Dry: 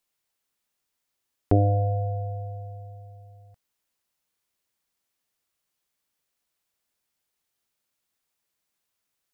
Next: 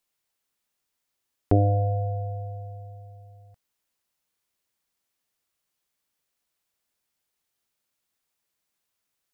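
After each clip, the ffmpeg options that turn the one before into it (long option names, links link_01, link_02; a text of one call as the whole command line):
ffmpeg -i in.wav -af anull out.wav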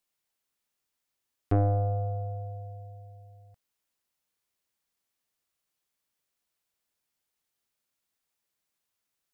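ffmpeg -i in.wav -af "aeval=exprs='(tanh(5.01*val(0)+0.35)-tanh(0.35))/5.01':channel_layout=same,volume=-2dB" out.wav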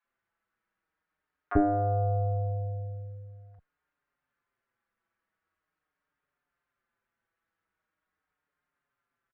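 ffmpeg -i in.wav -filter_complex "[0:a]lowpass=frequency=1500:width_type=q:width=2.3,acrossover=split=800[link_01][link_02];[link_01]adelay=40[link_03];[link_03][link_02]amix=inputs=2:normalize=0,asplit=2[link_04][link_05];[link_05]adelay=5.4,afreqshift=-0.43[link_06];[link_04][link_06]amix=inputs=2:normalize=1,volume=7.5dB" out.wav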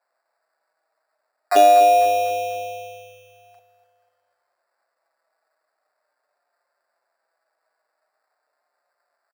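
ffmpeg -i in.wav -filter_complex "[0:a]acrusher=samples=14:mix=1:aa=0.000001,highpass=frequency=640:width_type=q:width=4.9,asplit=2[link_01][link_02];[link_02]aecho=0:1:248|496|744|992:0.251|0.108|0.0464|0.02[link_03];[link_01][link_03]amix=inputs=2:normalize=0,volume=6.5dB" out.wav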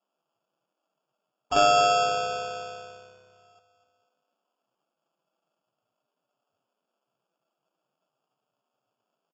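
ffmpeg -i in.wav -af "acrusher=samples=22:mix=1:aa=0.000001,volume=-7.5dB" -ar 16000 -c:a libvorbis -b:a 64k out.ogg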